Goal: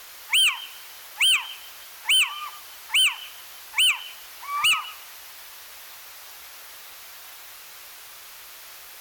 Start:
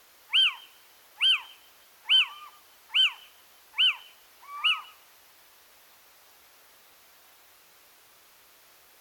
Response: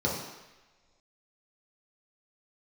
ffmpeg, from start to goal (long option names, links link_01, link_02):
-filter_complex "[0:a]equalizer=frequency=240:width=0.39:gain=-10,asplit=2[link_01][link_02];[link_02]acompressor=threshold=-33dB:ratio=6,volume=0dB[link_03];[link_01][link_03]amix=inputs=2:normalize=0,asoftclip=type=hard:threshold=-25.5dB,volume=8.5dB"